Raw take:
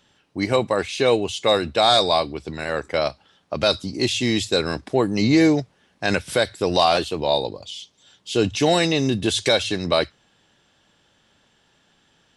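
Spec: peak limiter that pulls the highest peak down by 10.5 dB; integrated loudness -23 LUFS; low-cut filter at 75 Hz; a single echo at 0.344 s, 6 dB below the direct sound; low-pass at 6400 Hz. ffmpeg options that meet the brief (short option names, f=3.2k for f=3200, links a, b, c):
-af "highpass=75,lowpass=6.4k,alimiter=limit=-16dB:level=0:latency=1,aecho=1:1:344:0.501,volume=3dB"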